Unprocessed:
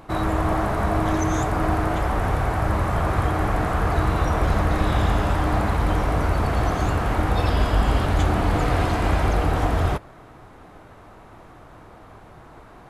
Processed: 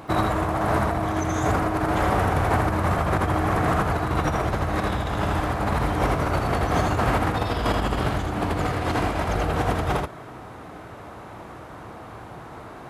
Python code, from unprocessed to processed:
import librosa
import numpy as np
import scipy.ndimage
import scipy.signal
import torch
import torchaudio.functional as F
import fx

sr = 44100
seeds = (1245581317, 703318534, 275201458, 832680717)

y = scipy.signal.sosfilt(scipy.signal.butter(2, 73.0, 'highpass', fs=sr, output='sos'), x)
y = fx.over_compress(y, sr, threshold_db=-25.0, ratio=-0.5)
y = y + 10.0 ** (-4.0 / 20.0) * np.pad(y, (int(80 * sr / 1000.0), 0))[:len(y)]
y = F.gain(torch.from_numpy(y), 1.5).numpy()